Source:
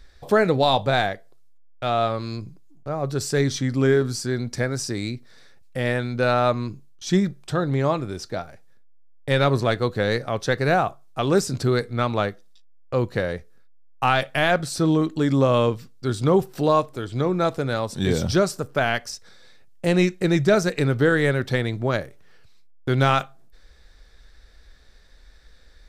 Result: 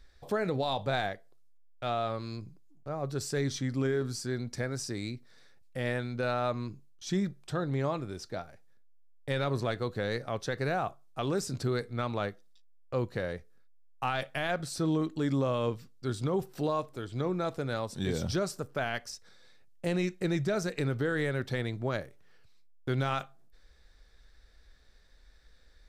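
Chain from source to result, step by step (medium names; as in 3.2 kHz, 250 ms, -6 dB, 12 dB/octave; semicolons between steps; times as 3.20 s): peak limiter -12.5 dBFS, peak gain reduction 6 dB; trim -8.5 dB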